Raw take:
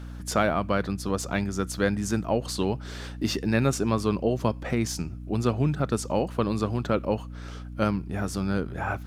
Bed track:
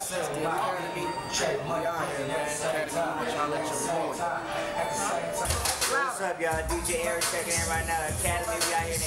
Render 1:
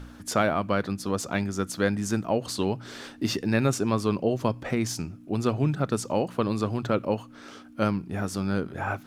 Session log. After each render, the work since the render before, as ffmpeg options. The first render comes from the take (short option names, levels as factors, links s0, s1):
-af "bandreject=f=60:t=h:w=4,bandreject=f=120:t=h:w=4,bandreject=f=180:t=h:w=4"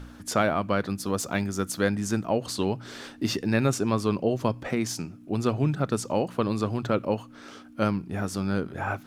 -filter_complex "[0:a]asettb=1/sr,asplit=3[s0][s1][s2];[s0]atrim=end=0.884[s3];[s1]atrim=start=0.88:end=1.89,asetpts=PTS-STARTPTS,afade=t=in:d=0.004:c=qsin,afade=t=out:st=1.006:d=0.004:c=qsin,highshelf=f=11000:g=9.5[s4];[s2]atrim=start=1.886[s5];[s3][s4]acrossfade=d=0.004:c1=hsin:c2=qsin[s6];[s6][s5]acrossfade=d=0.004:c1=qsin:c2=hsin,asettb=1/sr,asplit=3[s7][s8][s9];[s7]atrim=end=4.684[s10];[s8]atrim=start=4.68:end=5.22,asetpts=PTS-STARTPTS,afade=t=in:d=0.004:c=qsin,afade=t=out:st=0.536:d=0.004:c=qsin,highpass=130[s11];[s9]atrim=start=5.216[s12];[s10][s11]acrossfade=d=0.004:c1=hsin:c2=qsin[s13];[s13][s12]acrossfade=d=0.004:c1=qsin:c2=hsin"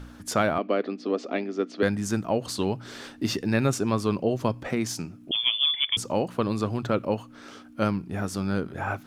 -filter_complex "[0:a]asettb=1/sr,asplit=3[s0][s1][s2];[s0]atrim=end=0.584[s3];[s1]atrim=start=0.58:end=1.83,asetpts=PTS-STARTPTS,afade=t=in:d=0.004:c=qsin,afade=t=out:st=1.246:d=0.004:c=qsin,highpass=f=260:w=0.5412,highpass=f=260:w=1.3066,equalizer=f=260:t=q:w=4:g=9,equalizer=f=410:t=q:w=4:g=6,equalizer=f=650:t=q:w=4:g=4,equalizer=f=950:t=q:w=4:g=-8,equalizer=f=1500:t=q:w=4:g=-7,equalizer=f=3700:t=q:w=4:g=-4,lowpass=f=4100:w=0.5412,lowpass=f=4100:w=1.3066[s4];[s2]atrim=start=1.826[s5];[s3][s4]acrossfade=d=0.004:c1=hsin:c2=qsin[s6];[s6][s5]acrossfade=d=0.004:c1=qsin:c2=hsin,asettb=1/sr,asplit=3[s7][s8][s9];[s7]atrim=end=5.314[s10];[s8]atrim=start=5.31:end=5.97,asetpts=PTS-STARTPTS,afade=t=in:d=0.004:c=qsin,afade=t=out:st=0.656:d=0.004:c=qsin,lowpass=f=3100:t=q:w=0.5098,lowpass=f=3100:t=q:w=0.6013,lowpass=f=3100:t=q:w=0.9,lowpass=f=3100:t=q:w=2.563,afreqshift=-3600[s11];[s9]atrim=start=5.966[s12];[s10][s11]acrossfade=d=0.004:c1=hsin:c2=qsin[s13];[s13][s12]acrossfade=d=0.004:c1=qsin:c2=hsin"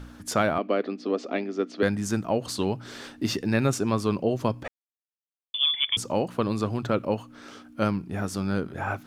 -filter_complex "[0:a]asplit=3[s0][s1][s2];[s0]atrim=end=4.68,asetpts=PTS-STARTPTS,afade=t=out:st=4.676:d=0.004:c=hsin[s3];[s1]atrim=start=4.68:end=5.54,asetpts=PTS-STARTPTS,volume=0[s4];[s2]atrim=start=5.54,asetpts=PTS-STARTPTS,afade=t=in:d=0.004:c=hsin[s5];[s3][s4][s5]concat=n=3:v=0:a=1"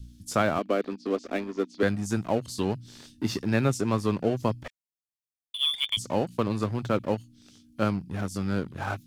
-filter_complex "[0:a]acrossover=split=230|3400[s0][s1][s2];[s1]aeval=exprs='sgn(val(0))*max(abs(val(0))-0.0106,0)':c=same[s3];[s2]flanger=delay=17.5:depth=7.2:speed=2.2[s4];[s0][s3][s4]amix=inputs=3:normalize=0"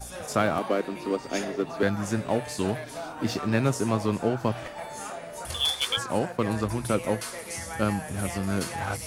-filter_complex "[1:a]volume=0.398[s0];[0:a][s0]amix=inputs=2:normalize=0"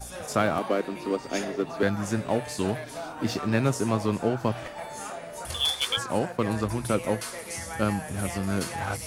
-af anull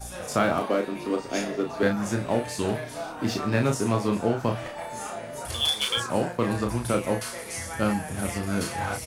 -filter_complex "[0:a]asplit=2[s0][s1];[s1]adelay=34,volume=0.562[s2];[s0][s2]amix=inputs=2:normalize=0,asplit=2[s3][s4];[s4]adelay=1691,volume=0.0794,highshelf=f=4000:g=-38[s5];[s3][s5]amix=inputs=2:normalize=0"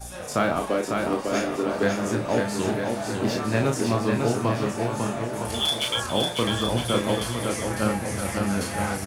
-af "aecho=1:1:550|962.5|1272|1504|1678:0.631|0.398|0.251|0.158|0.1"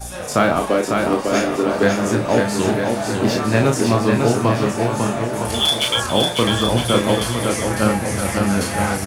-af "volume=2.24"